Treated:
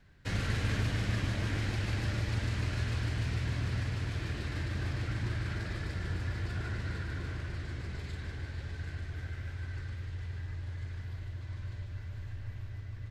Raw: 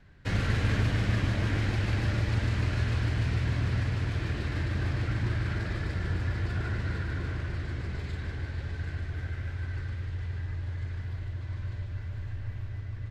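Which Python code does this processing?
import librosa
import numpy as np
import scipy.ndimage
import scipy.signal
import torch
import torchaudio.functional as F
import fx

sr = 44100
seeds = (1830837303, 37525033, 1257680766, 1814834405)

y = fx.high_shelf(x, sr, hz=4100.0, db=7.5)
y = F.gain(torch.from_numpy(y), -5.0).numpy()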